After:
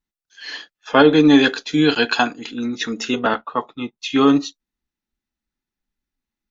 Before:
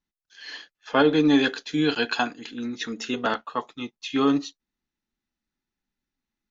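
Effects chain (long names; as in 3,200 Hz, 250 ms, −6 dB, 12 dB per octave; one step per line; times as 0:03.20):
noise reduction from a noise print of the clip's start 8 dB
0:03.19–0:03.99: high-frequency loss of the air 210 metres
level +7 dB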